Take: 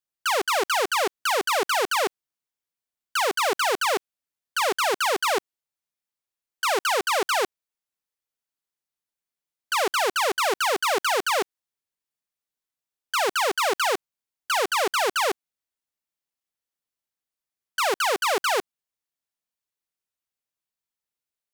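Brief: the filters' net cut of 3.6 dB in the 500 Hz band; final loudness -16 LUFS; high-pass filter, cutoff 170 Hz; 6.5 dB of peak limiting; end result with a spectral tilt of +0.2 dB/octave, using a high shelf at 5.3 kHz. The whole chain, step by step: high-pass 170 Hz; peaking EQ 500 Hz -4.5 dB; treble shelf 5.3 kHz +5 dB; trim +13.5 dB; peak limiter -3.5 dBFS

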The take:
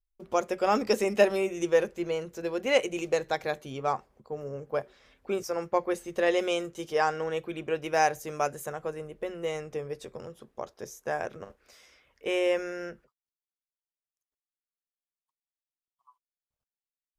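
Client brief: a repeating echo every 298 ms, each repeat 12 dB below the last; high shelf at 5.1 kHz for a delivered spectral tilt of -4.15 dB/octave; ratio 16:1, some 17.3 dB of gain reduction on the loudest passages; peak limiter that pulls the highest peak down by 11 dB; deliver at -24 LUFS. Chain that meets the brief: treble shelf 5.1 kHz +7 dB; compression 16:1, threshold -34 dBFS; peak limiter -32.5 dBFS; feedback delay 298 ms, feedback 25%, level -12 dB; trim +19 dB

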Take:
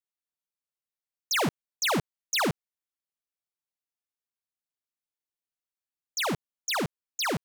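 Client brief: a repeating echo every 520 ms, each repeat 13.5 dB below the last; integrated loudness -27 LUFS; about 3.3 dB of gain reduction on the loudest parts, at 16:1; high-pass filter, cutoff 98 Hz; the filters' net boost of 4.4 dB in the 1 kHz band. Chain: high-pass 98 Hz; peaking EQ 1 kHz +5.5 dB; compression 16:1, threshold -24 dBFS; feedback delay 520 ms, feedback 21%, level -13.5 dB; trim +2.5 dB

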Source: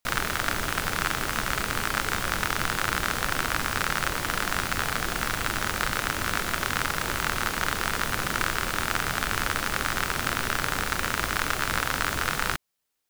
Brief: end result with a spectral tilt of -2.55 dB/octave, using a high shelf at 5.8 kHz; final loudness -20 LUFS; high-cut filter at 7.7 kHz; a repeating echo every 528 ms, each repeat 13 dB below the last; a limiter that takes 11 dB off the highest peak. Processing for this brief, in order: low-pass 7.7 kHz; treble shelf 5.8 kHz +4 dB; peak limiter -16 dBFS; feedback delay 528 ms, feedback 22%, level -13 dB; trim +12 dB

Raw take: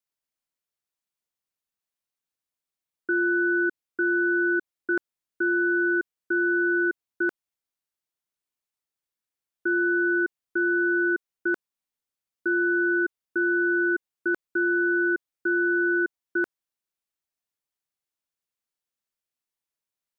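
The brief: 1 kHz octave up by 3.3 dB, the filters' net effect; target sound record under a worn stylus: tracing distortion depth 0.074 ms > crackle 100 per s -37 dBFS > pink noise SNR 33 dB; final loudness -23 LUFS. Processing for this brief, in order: peaking EQ 1 kHz +7.5 dB; tracing distortion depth 0.074 ms; crackle 100 per s -37 dBFS; pink noise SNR 33 dB; trim -0.5 dB

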